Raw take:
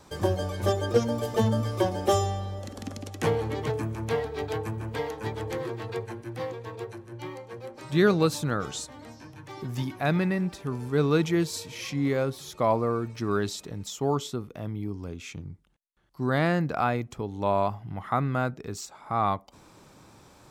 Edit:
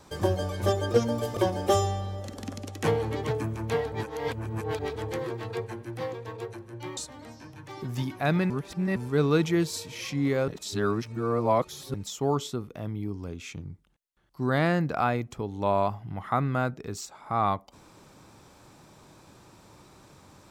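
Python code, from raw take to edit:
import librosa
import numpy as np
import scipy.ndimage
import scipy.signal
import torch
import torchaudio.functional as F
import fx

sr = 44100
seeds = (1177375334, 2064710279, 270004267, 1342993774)

y = fx.edit(x, sr, fx.cut(start_s=1.37, length_s=0.39),
    fx.reverse_span(start_s=4.31, length_s=1.04),
    fx.cut(start_s=7.36, length_s=1.41),
    fx.reverse_span(start_s=10.3, length_s=0.46),
    fx.reverse_span(start_s=12.28, length_s=1.46), tone=tone)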